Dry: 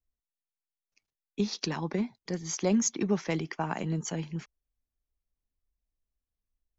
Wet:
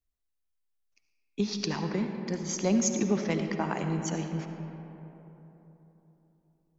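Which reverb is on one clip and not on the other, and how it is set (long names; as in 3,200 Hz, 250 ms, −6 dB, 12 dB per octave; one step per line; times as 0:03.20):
comb and all-pass reverb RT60 3.7 s, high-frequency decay 0.4×, pre-delay 30 ms, DRR 5 dB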